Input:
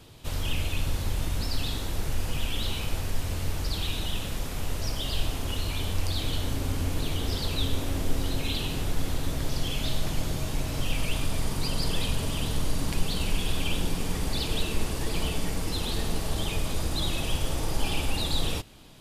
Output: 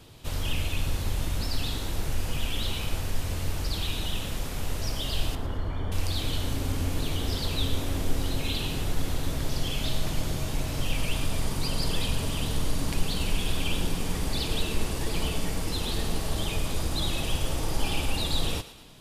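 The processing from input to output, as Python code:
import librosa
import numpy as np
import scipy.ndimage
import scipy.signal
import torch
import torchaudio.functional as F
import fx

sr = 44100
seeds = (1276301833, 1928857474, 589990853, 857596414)

p1 = fx.savgol(x, sr, points=41, at=(5.35, 5.92))
y = p1 + fx.echo_thinned(p1, sr, ms=112, feedback_pct=49, hz=420.0, wet_db=-13.5, dry=0)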